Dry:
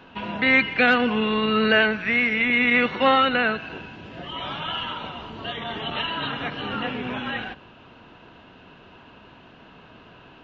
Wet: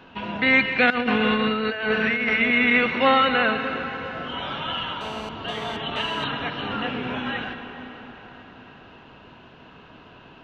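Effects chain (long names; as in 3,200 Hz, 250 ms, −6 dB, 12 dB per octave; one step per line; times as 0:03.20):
dense smooth reverb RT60 4.9 s, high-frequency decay 0.65×, pre-delay 110 ms, DRR 7.5 dB
0:00.90–0:02.37: compressor whose output falls as the input rises −22 dBFS, ratio −0.5
0:05.01–0:06.24: phone interference −36 dBFS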